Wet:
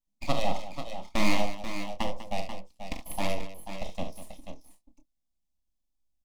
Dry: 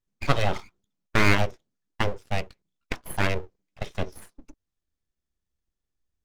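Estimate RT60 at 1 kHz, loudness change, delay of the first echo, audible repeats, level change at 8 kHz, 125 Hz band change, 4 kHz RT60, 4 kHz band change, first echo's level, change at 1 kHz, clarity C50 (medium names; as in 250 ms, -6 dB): no reverb, -6.0 dB, 43 ms, 3, -1.0 dB, -11.5 dB, no reverb, -3.0 dB, -8.5 dB, -3.0 dB, no reverb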